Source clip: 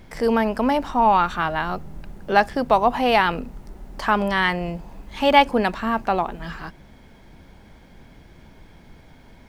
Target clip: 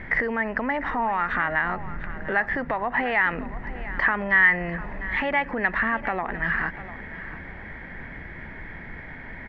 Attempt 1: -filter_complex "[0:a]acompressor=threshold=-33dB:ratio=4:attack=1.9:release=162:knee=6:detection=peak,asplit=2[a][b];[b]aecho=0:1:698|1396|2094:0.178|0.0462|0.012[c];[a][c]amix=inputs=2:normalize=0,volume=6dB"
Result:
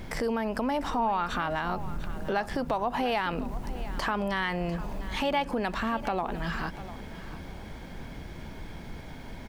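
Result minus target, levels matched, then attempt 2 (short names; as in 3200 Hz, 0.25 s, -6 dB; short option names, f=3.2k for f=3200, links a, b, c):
2000 Hz band -7.0 dB
-filter_complex "[0:a]acompressor=threshold=-33dB:ratio=4:attack=1.9:release=162:knee=6:detection=peak,lowpass=f=1.9k:t=q:w=9.9,asplit=2[a][b];[b]aecho=0:1:698|1396|2094:0.178|0.0462|0.012[c];[a][c]amix=inputs=2:normalize=0,volume=6dB"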